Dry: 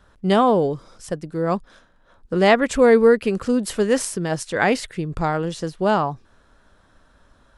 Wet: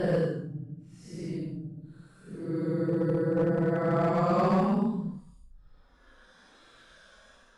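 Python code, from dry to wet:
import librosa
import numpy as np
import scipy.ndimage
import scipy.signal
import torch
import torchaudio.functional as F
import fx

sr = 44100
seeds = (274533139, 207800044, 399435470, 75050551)

y = fx.dynamic_eq(x, sr, hz=170.0, q=0.72, threshold_db=-31.0, ratio=4.0, max_db=4)
y = fx.paulstretch(y, sr, seeds[0], factor=11.0, window_s=0.05, from_s=1.12)
y = fx.clip_asym(y, sr, top_db=-14.5, bottom_db=-10.0)
y = F.gain(torch.from_numpy(y), -6.5).numpy()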